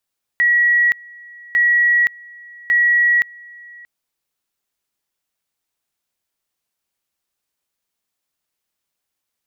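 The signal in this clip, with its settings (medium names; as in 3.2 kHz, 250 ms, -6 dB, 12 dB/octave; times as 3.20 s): two-level tone 1.92 kHz -11 dBFS, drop 25.5 dB, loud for 0.52 s, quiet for 0.63 s, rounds 3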